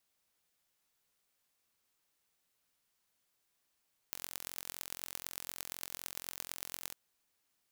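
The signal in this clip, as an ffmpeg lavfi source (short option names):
-f lavfi -i "aevalsrc='0.282*eq(mod(n,1002),0)*(0.5+0.5*eq(mod(n,5010),0))':d=2.81:s=44100"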